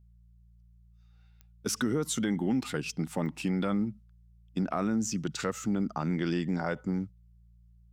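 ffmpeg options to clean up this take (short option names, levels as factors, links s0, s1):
-af "adeclick=t=4,bandreject=f=57.7:t=h:w=4,bandreject=f=115.4:t=h:w=4,bandreject=f=173.1:t=h:w=4"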